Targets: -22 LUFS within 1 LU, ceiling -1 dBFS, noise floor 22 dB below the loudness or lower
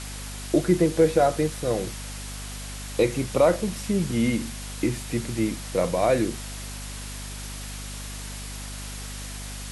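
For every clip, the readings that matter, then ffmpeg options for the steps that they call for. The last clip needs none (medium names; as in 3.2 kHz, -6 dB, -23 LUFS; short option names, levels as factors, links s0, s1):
hum 50 Hz; highest harmonic 250 Hz; hum level -35 dBFS; noise floor -36 dBFS; noise floor target -49 dBFS; loudness -26.5 LUFS; peak level -8.0 dBFS; loudness target -22.0 LUFS
-> -af "bandreject=f=50:t=h:w=4,bandreject=f=100:t=h:w=4,bandreject=f=150:t=h:w=4,bandreject=f=200:t=h:w=4,bandreject=f=250:t=h:w=4"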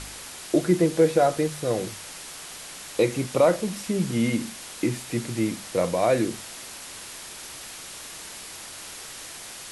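hum not found; noise floor -40 dBFS; noise floor target -47 dBFS
-> -af "afftdn=nr=7:nf=-40"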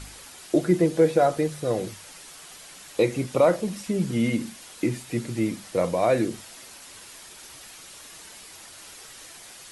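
noise floor -46 dBFS; noise floor target -47 dBFS
-> -af "afftdn=nr=6:nf=-46"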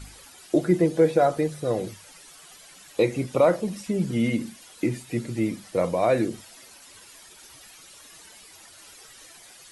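noise floor -49 dBFS; loudness -24.5 LUFS; peak level -8.0 dBFS; loudness target -22.0 LUFS
-> -af "volume=1.33"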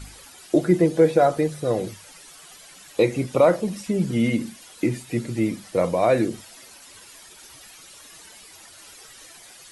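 loudness -22.0 LUFS; peak level -5.5 dBFS; noise floor -47 dBFS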